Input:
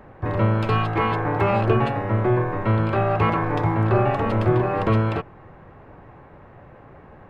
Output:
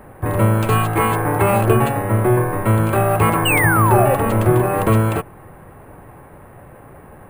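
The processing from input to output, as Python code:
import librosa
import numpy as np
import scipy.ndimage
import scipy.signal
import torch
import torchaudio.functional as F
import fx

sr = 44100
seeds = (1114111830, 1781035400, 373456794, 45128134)

y = fx.spec_paint(x, sr, seeds[0], shape='fall', start_s=3.45, length_s=0.7, low_hz=490.0, high_hz=3000.0, level_db=-22.0)
y = np.repeat(y[::4], 4)[:len(y)]
y = F.gain(torch.from_numpy(y), 4.5).numpy()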